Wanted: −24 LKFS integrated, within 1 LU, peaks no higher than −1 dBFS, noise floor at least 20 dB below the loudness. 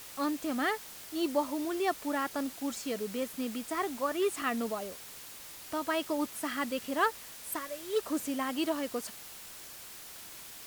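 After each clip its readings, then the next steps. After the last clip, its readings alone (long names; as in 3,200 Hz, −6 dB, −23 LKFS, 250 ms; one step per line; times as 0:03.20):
background noise floor −48 dBFS; target noise floor −54 dBFS; integrated loudness −34.0 LKFS; sample peak −15.5 dBFS; target loudness −24.0 LKFS
→ noise reduction from a noise print 6 dB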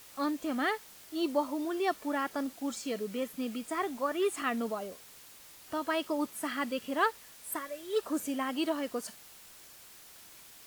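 background noise floor −54 dBFS; integrated loudness −34.0 LKFS; sample peak −15.5 dBFS; target loudness −24.0 LKFS
→ level +10 dB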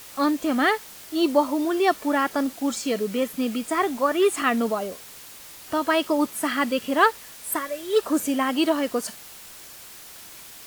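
integrated loudness −24.0 LKFS; sample peak −5.5 dBFS; background noise floor −44 dBFS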